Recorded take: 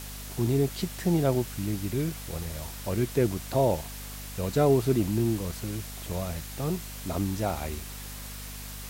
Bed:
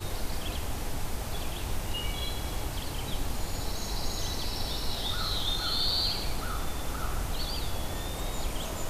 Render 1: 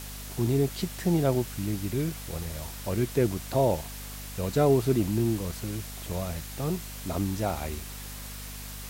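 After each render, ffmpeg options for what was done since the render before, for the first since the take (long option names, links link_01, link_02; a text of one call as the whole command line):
ffmpeg -i in.wav -af anull out.wav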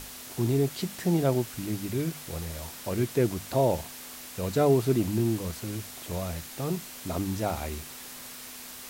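ffmpeg -i in.wav -af "bandreject=frequency=50:width_type=h:width=6,bandreject=frequency=100:width_type=h:width=6,bandreject=frequency=150:width_type=h:width=6,bandreject=frequency=200:width_type=h:width=6" out.wav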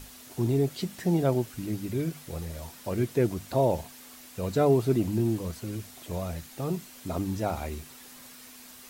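ffmpeg -i in.wav -af "afftdn=noise_reduction=7:noise_floor=-43" out.wav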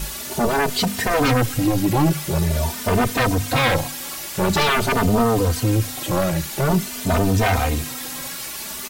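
ffmpeg -i in.wav -filter_complex "[0:a]aeval=exprs='0.266*sin(PI/2*7.08*val(0)/0.266)':channel_layout=same,asplit=2[link_01][link_02];[link_02]adelay=3.1,afreqshift=0.47[link_03];[link_01][link_03]amix=inputs=2:normalize=1" out.wav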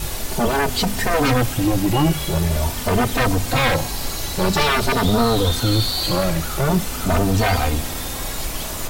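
ffmpeg -i in.wav -i bed.wav -filter_complex "[1:a]volume=4.5dB[link_01];[0:a][link_01]amix=inputs=2:normalize=0" out.wav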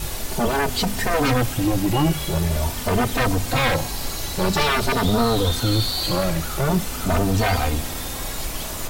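ffmpeg -i in.wav -af "volume=-2dB" out.wav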